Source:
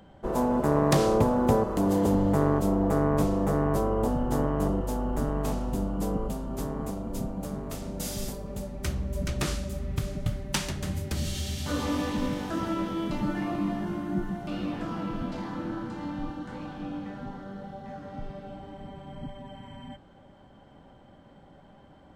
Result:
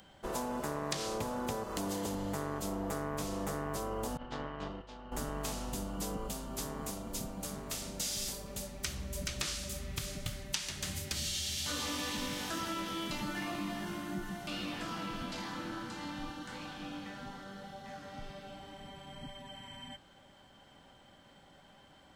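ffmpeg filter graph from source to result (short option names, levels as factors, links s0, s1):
-filter_complex "[0:a]asettb=1/sr,asplit=3[s0][s1][s2];[s0]atrim=end=4.174[s3];[s1]atrim=start=4.17:end=5.12,asetpts=PTS-STARTPTS,afade=t=in:d=0.004:c=qsin,afade=t=out:st=0.946:d=0.004:c=qsin,lowpass=f=3800:w=0.5412,lowpass=f=3800:w=1.3066,tiltshelf=f=1300:g=-3.5,agate=range=0.0224:threshold=0.0562:ratio=3:release=100:detection=peak[s4];[s2]atrim=start=5.116[s5];[s3][s4]acrossfade=d=0.004:c1=hsin:c2=qsin[s6];[s6][s5]acrossfade=d=0.004:c1=qsin:c2=hsin,acrossover=split=7600[s7][s8];[s8]acompressor=threshold=0.00316:ratio=4:attack=1:release=60[s9];[s7][s9]amix=inputs=2:normalize=0,tiltshelf=f=1500:g=-9.5,acompressor=threshold=0.0224:ratio=6"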